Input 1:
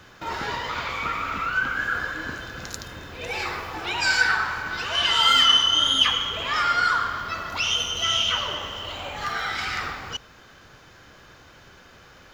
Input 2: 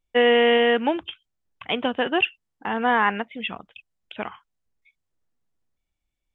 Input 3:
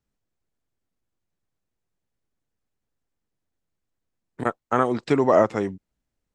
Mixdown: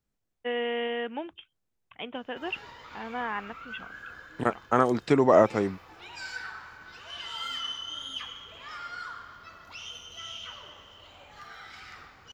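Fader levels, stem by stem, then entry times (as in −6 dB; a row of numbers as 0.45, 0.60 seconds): −18.0, −13.0, −1.5 decibels; 2.15, 0.30, 0.00 seconds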